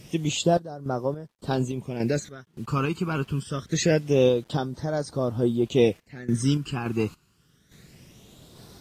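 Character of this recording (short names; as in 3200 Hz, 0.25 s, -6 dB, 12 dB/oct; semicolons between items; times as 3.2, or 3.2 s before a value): phasing stages 12, 0.25 Hz, lowest notch 590–2600 Hz; a quantiser's noise floor 10-bit, dither none; random-step tremolo, depth 90%; AAC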